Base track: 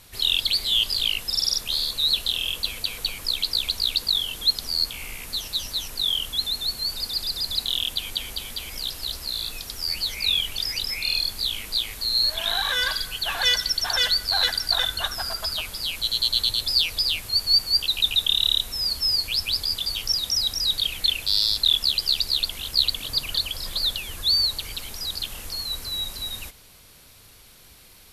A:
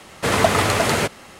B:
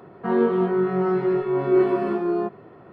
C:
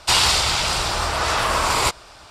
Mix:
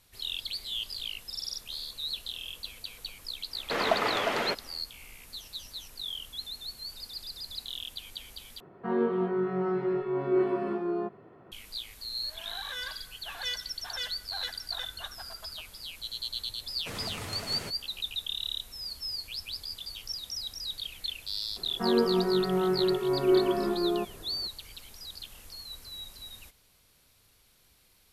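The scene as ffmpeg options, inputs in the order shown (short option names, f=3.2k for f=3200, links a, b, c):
-filter_complex "[1:a]asplit=2[a][b];[2:a]asplit=2[c][d];[0:a]volume=-13.5dB[e];[a]highpass=280,lowpass=4k[f];[b]acrossover=split=250|3000[g][h][i];[h]acompressor=threshold=-22dB:ratio=6:attack=3.2:release=140:knee=2.83:detection=peak[j];[g][j][i]amix=inputs=3:normalize=0[k];[e]asplit=2[l][m];[l]atrim=end=8.604[n];[c]atrim=end=2.92,asetpts=PTS-STARTPTS,volume=-7.5dB[o];[m]atrim=start=11.516[p];[f]atrim=end=1.39,asetpts=PTS-STARTPTS,volume=-9dB,afade=t=in:d=0.1,afade=t=out:st=1.29:d=0.1,adelay=3470[q];[k]atrim=end=1.39,asetpts=PTS-STARTPTS,volume=-17.5dB,afade=t=in:d=0.004:c=hsin,afade=t=out:st=1.386:d=0.004:c=hsin,adelay=16630[r];[d]atrim=end=2.92,asetpts=PTS-STARTPTS,volume=-5dB,afade=t=in:d=0.004:c=hsin,afade=t=out:st=2.916:d=0.004:c=hsin,adelay=21560[s];[n][o]acrossfade=d=0.004:c1=hsin:c2=hsin[t];[t][p]acrossfade=d=0.004:c1=hsin:c2=hsin[u];[u][q][r][s]amix=inputs=4:normalize=0"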